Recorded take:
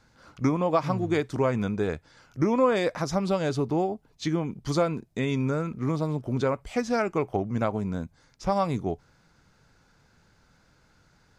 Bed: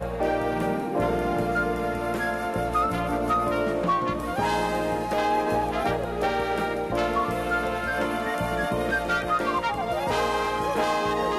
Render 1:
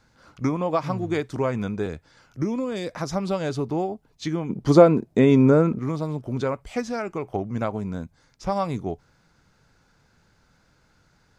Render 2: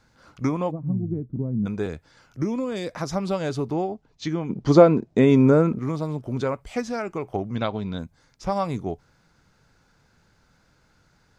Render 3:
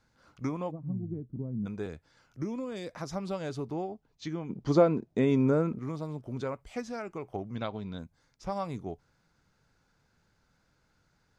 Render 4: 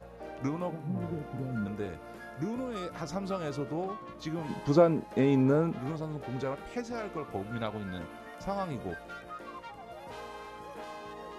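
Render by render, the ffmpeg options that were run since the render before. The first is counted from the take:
-filter_complex "[0:a]asettb=1/sr,asplit=3[a][b][c];[a]atrim=end=1.864[d];[b]atrim=start=1.86:end=2.96,asetpts=PTS-STARTPTS,afade=t=in:d=0.004:c=qsin,afade=t=out:st=1.096:d=0.004:c=qsin,acrossover=split=380|3000[e][f][g];[f]acompressor=threshold=-36dB:ratio=6:attack=3.2:release=140:knee=2.83:detection=peak[h];[e][h][g]amix=inputs=3:normalize=0[i];[c]atrim=start=2.956[j];[d][i]acrossfade=d=0.004:c1=hsin:c2=qsin[k];[k][j]acrossfade=d=0.004:c1=qsin:c2=hsin,asplit=3[l][m][n];[l]afade=t=out:st=4.49:d=0.02[o];[m]equalizer=f=380:w=0.32:g=13,afade=t=in:st=4.49:d=0.02,afade=t=out:st=5.78:d=0.02[p];[n]afade=t=in:st=5.78:d=0.02[q];[o][p][q]amix=inputs=3:normalize=0,asettb=1/sr,asplit=3[r][s][t];[r]atrim=end=6.864[u];[s]atrim=start=6.86:end=7.31,asetpts=PTS-STARTPTS,afade=t=in:d=0.004:c=qsin,afade=t=out:st=0.446:d=0.004:c=qsin,acompressor=threshold=-29dB:ratio=1.5:attack=3.2:release=140:knee=1:detection=peak[v];[t]atrim=start=7.306[w];[u][v]acrossfade=d=0.004:c1=hsin:c2=qsin[x];[x][w]acrossfade=d=0.004:c1=qsin:c2=hsin"
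-filter_complex "[0:a]asplit=3[a][b][c];[a]afade=t=out:st=0.7:d=0.02[d];[b]lowpass=f=210:t=q:w=1.7,afade=t=in:st=0.7:d=0.02,afade=t=out:st=1.65:d=0.02[e];[c]afade=t=in:st=1.65:d=0.02[f];[d][e][f]amix=inputs=3:normalize=0,asettb=1/sr,asplit=3[g][h][i];[g]atrim=end=3.744[j];[h]atrim=start=3.74:end=5.18,asetpts=PTS-STARTPTS,afade=t=in:d=0.004:c=qsin,afade=t=out:st=1.436:d=0.004:c=qsin,lowpass=f=7k:w=0.5412,lowpass=f=7k:w=1.3066[k];[i]atrim=start=5.176[l];[j][k]acrossfade=d=0.004:c1=hsin:c2=qsin[m];[m][l]acrossfade=d=0.004:c1=qsin:c2=hsin,asettb=1/sr,asplit=3[n][o][p];[n]atrim=end=7.554[q];[o]atrim=start=7.55:end=7.99,asetpts=PTS-STARTPTS,afade=t=in:d=0.004:c=qsin,afade=t=out:st=0.436:d=0.004:c=qsin,lowpass=f=3.7k:t=q:w=6.2[r];[p]atrim=start=7.986[s];[q][r]acrossfade=d=0.004:c1=hsin:c2=qsin[t];[t][s]acrossfade=d=0.004:c1=qsin:c2=hsin"
-af "volume=-9dB"
-filter_complex "[1:a]volume=-19dB[a];[0:a][a]amix=inputs=2:normalize=0"

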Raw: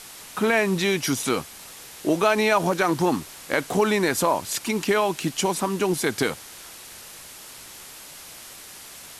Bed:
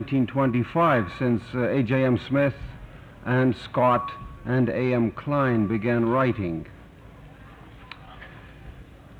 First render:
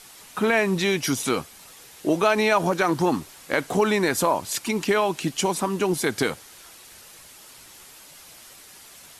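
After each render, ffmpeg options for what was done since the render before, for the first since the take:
-af "afftdn=nr=6:nf=-43"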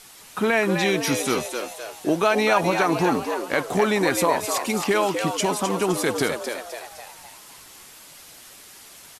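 -filter_complex "[0:a]asplit=7[a][b][c][d][e][f][g];[b]adelay=257,afreqshift=110,volume=-6.5dB[h];[c]adelay=514,afreqshift=220,volume=-12.7dB[i];[d]adelay=771,afreqshift=330,volume=-18.9dB[j];[e]adelay=1028,afreqshift=440,volume=-25.1dB[k];[f]adelay=1285,afreqshift=550,volume=-31.3dB[l];[g]adelay=1542,afreqshift=660,volume=-37.5dB[m];[a][h][i][j][k][l][m]amix=inputs=7:normalize=0"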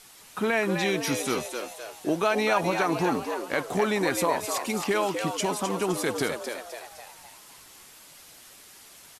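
-af "volume=-4.5dB"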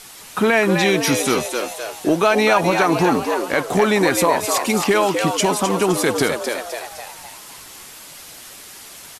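-filter_complex "[0:a]asplit=2[a][b];[b]alimiter=limit=-19dB:level=0:latency=1:release=378,volume=-2dB[c];[a][c]amix=inputs=2:normalize=0,acontrast=48"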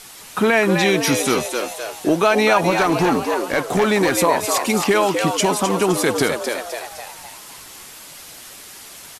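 -filter_complex "[0:a]asettb=1/sr,asplit=3[a][b][c];[a]atrim=end=2.704[d];[b]atrim=start=2.7:end=4.14,asetpts=PTS-STARTPTS,afade=t=in:d=0.004:c=qsin,afade=t=out:st=1.436:d=0.004:c=qsin,asoftclip=type=hard:threshold=-11.5dB[e];[c]atrim=start=4.136[f];[d][e]acrossfade=d=0.004:c1=hsin:c2=qsin[g];[g][f]acrossfade=d=0.004:c1=qsin:c2=hsin"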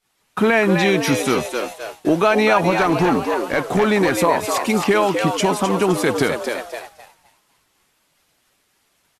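-af "agate=range=-33dB:threshold=-25dB:ratio=3:detection=peak,bass=f=250:g=2,treble=f=4k:g=-6"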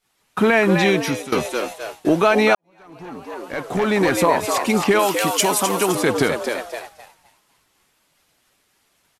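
-filter_complex "[0:a]asettb=1/sr,asplit=3[a][b][c];[a]atrim=end=4.994[d];[b]atrim=start=4.99:end=5.95,asetpts=PTS-STARTPTS,afade=t=in:d=0.004:c=qsin,afade=t=out:st=0.956:d=0.004:c=qsin,aemphasis=mode=production:type=bsi[e];[c]atrim=start=5.946[f];[d][e]acrossfade=d=0.004:c1=hsin:c2=qsin[g];[g][f]acrossfade=d=0.004:c1=qsin:c2=hsin,asplit=3[h][i][j];[h]atrim=end=1.32,asetpts=PTS-STARTPTS,afade=t=out:st=0.9:d=0.42:silence=0.133352[k];[i]atrim=start=1.32:end=2.55,asetpts=PTS-STARTPTS,afade=t=in:d=0.004:c=hsin:silence=0.133352,afade=t=out:st=1.226:d=0.004:c=hsin[l];[j]atrim=start=2.55,asetpts=PTS-STARTPTS,afade=t=in:d=1.54:c=qua[m];[k][l][m]concat=n=3:v=0:a=1"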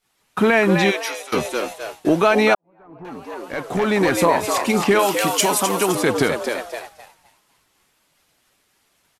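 -filter_complex "[0:a]asplit=3[a][b][c];[a]afade=t=out:st=0.9:d=0.02[d];[b]highpass=f=520:w=0.5412,highpass=f=520:w=1.3066,afade=t=in:st=0.9:d=0.02,afade=t=out:st=1.32:d=0.02[e];[c]afade=t=in:st=1.32:d=0.02[f];[d][e][f]amix=inputs=3:normalize=0,asettb=1/sr,asplit=3[g][h][i];[g]atrim=end=2.544[j];[h]atrim=start=2.54:end=3.05,asetpts=PTS-STARTPTS,afade=t=in:d=0.004:c=qsin,afade=t=out:st=0.506:d=0.004:c=qsin,lowpass=1.2k[k];[i]atrim=start=3.046[l];[j][k]acrossfade=d=0.004:c1=hsin:c2=qsin[m];[m][l]acrossfade=d=0.004:c1=qsin:c2=hsin,asettb=1/sr,asplit=3[n][o][p];[n]atrim=end=4.184[q];[o]atrim=start=4.18:end=5.58,asetpts=PTS-STARTPTS,afade=t=in:d=0.004:c=qsin,afade=t=out:st=1.396:d=0.004:c=qsin,asplit=2[r][s];[s]adelay=35,volume=-13dB[t];[r][t]amix=inputs=2:normalize=0,atrim=end_sample=61740[u];[p]atrim=start=5.576[v];[q][u]acrossfade=d=0.004:c1=hsin:c2=qsin[w];[w][v]acrossfade=d=0.004:c1=qsin:c2=hsin"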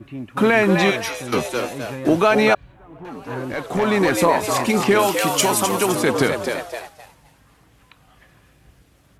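-filter_complex "[1:a]volume=-9.5dB[a];[0:a][a]amix=inputs=2:normalize=0"

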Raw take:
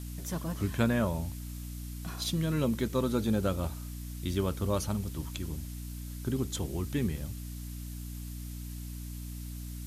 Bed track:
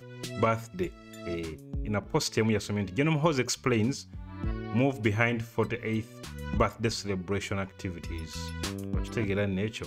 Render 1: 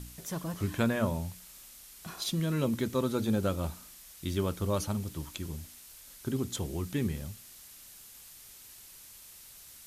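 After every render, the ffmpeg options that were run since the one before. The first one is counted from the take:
-af "bandreject=f=60:t=h:w=4,bandreject=f=120:t=h:w=4,bandreject=f=180:t=h:w=4,bandreject=f=240:t=h:w=4,bandreject=f=300:t=h:w=4"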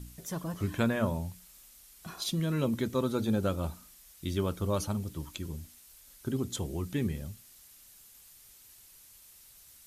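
-af "afftdn=nr=6:nf=-52"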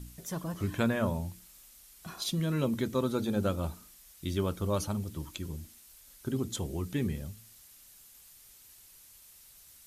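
-af "bandreject=f=109.5:t=h:w=4,bandreject=f=219:t=h:w=4,bandreject=f=328.5:t=h:w=4,bandreject=f=438:t=h:w=4"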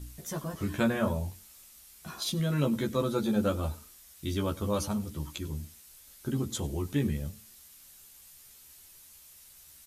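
-filter_complex "[0:a]asplit=2[a][b];[b]adelay=14,volume=-3dB[c];[a][c]amix=inputs=2:normalize=0,aecho=1:1:98:0.075"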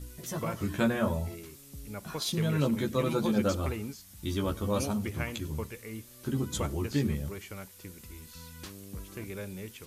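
-filter_complex "[1:a]volume=-11dB[a];[0:a][a]amix=inputs=2:normalize=0"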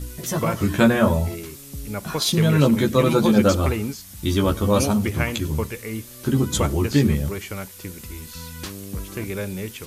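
-af "volume=11dB"

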